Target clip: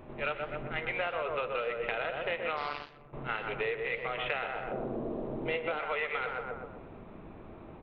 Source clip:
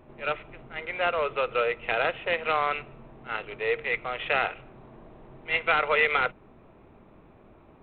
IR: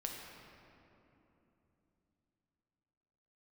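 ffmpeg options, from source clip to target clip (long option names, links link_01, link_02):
-filter_complex "[0:a]asplit=2[link_01][link_02];[link_02]adelay=124,lowpass=frequency=1300:poles=1,volume=-4dB,asplit=2[link_03][link_04];[link_04]adelay=124,lowpass=frequency=1300:poles=1,volume=0.48,asplit=2[link_05][link_06];[link_06]adelay=124,lowpass=frequency=1300:poles=1,volume=0.48,asplit=2[link_07][link_08];[link_08]adelay=124,lowpass=frequency=1300:poles=1,volume=0.48,asplit=2[link_09][link_10];[link_10]adelay=124,lowpass=frequency=1300:poles=1,volume=0.48,asplit=2[link_11][link_12];[link_12]adelay=124,lowpass=frequency=1300:poles=1,volume=0.48[link_13];[link_01][link_03][link_05][link_07][link_09][link_11][link_13]amix=inputs=7:normalize=0,asplit=3[link_14][link_15][link_16];[link_14]afade=type=out:start_time=2.56:duration=0.02[link_17];[link_15]aeval=exprs='0.211*(cos(1*acos(clip(val(0)/0.211,-1,1)))-cos(1*PI/2))+0.00841*(cos(5*acos(clip(val(0)/0.211,-1,1)))-cos(5*PI/2))+0.0422*(cos(7*acos(clip(val(0)/0.211,-1,1)))-cos(7*PI/2))':channel_layout=same,afade=type=in:start_time=2.56:duration=0.02,afade=type=out:start_time=3.12:duration=0.02[link_18];[link_16]afade=type=in:start_time=3.12:duration=0.02[link_19];[link_17][link_18][link_19]amix=inputs=3:normalize=0,asettb=1/sr,asplit=3[link_20][link_21][link_22];[link_20]atrim=end=4.714[link_23];[link_21]atrim=start=4.71:end=5.79,asetpts=PTS-STARTPTS,afade=type=in:duration=0.004:curve=qsin,afade=type=out:start_time=1.076:duration=0.004:curve=qsin,equalizer=frequency=250:width_type=o:width=1:gain=8,equalizer=frequency=500:width_type=o:width=1:gain=10,equalizer=frequency=2000:width_type=o:width=1:gain=-4[link_24];[link_22]atrim=start=5.786[link_25];[link_23][link_24]acrossfade=duration=0.004:curve1=hsin:curve2=qsin[link_26];[link_26][link_25]acrossfade=duration=0.004:curve1=qsin:curve2=hsin,acompressor=threshold=-34dB:ratio=12,aresample=11025,aresample=44100,flanger=delay=9.7:depth=6.7:regen=-81:speed=1.7:shape=sinusoidal,volume=8.5dB"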